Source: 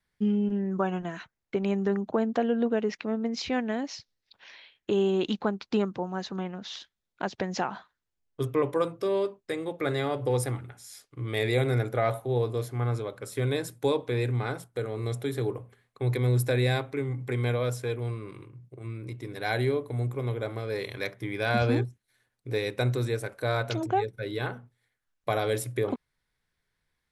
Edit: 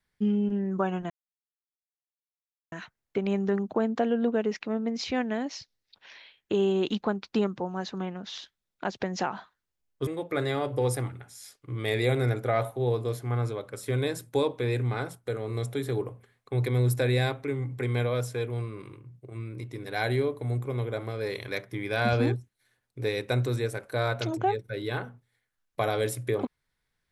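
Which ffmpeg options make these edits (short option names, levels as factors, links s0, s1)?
-filter_complex "[0:a]asplit=3[s0][s1][s2];[s0]atrim=end=1.1,asetpts=PTS-STARTPTS,afade=t=out:st=1.096:d=0.004:c=hsin,apad=pad_dur=1.62[s3];[s1]atrim=start=1.1:end=8.452,asetpts=PTS-STARTPTS,afade=t=in:d=0.004:c=hsin[s4];[s2]atrim=start=9.558[s5];[s3][s4]concat=n=2:v=0:a=1[s6];[s6][s5]acrossfade=d=0.004:c1=hsin:c2=hsin"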